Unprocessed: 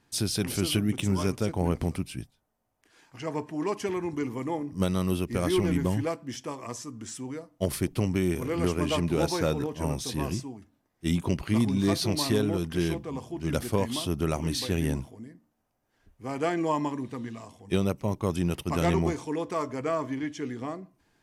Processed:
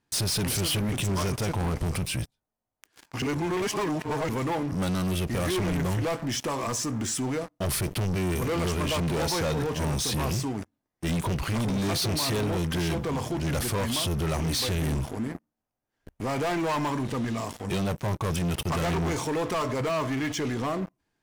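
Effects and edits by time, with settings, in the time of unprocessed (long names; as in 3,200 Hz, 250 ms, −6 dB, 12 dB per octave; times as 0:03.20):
0:03.22–0:04.29: reverse
whole clip: dynamic equaliser 290 Hz, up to −7 dB, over −40 dBFS, Q 1.3; leveller curve on the samples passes 5; brickwall limiter −24 dBFS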